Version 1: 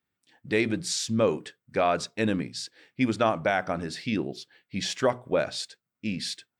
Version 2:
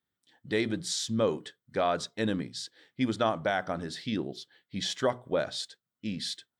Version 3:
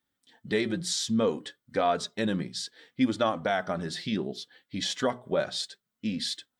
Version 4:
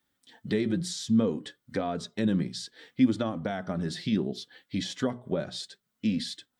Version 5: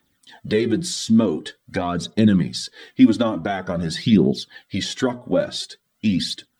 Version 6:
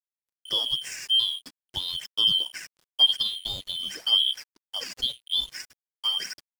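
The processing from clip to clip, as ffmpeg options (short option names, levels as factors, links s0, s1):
-af "superequalizer=12b=0.562:13b=1.58,volume=0.668"
-filter_complex "[0:a]asplit=2[s0][s1];[s1]acompressor=threshold=0.0158:ratio=6,volume=0.891[s2];[s0][s2]amix=inputs=2:normalize=0,flanger=delay=3.3:depth=2.4:regen=40:speed=0.63:shape=triangular,volume=1.41"
-filter_complex "[0:a]acrossover=split=340[s0][s1];[s1]acompressor=threshold=0.00631:ratio=2.5[s2];[s0][s2]amix=inputs=2:normalize=0,volume=1.68"
-af "aphaser=in_gain=1:out_gain=1:delay=3.8:decay=0.53:speed=0.47:type=triangular,volume=2.51"
-af "afftfilt=real='real(if(lt(b,272),68*(eq(floor(b/68),0)*1+eq(floor(b/68),1)*3+eq(floor(b/68),2)*0+eq(floor(b/68),3)*2)+mod(b,68),b),0)':imag='imag(if(lt(b,272),68*(eq(floor(b/68),0)*1+eq(floor(b/68),1)*3+eq(floor(b/68),2)*0+eq(floor(b/68),3)*2)+mod(b,68),b),0)':win_size=2048:overlap=0.75,aeval=exprs='sgn(val(0))*max(abs(val(0))-0.0188,0)':c=same,volume=0.473"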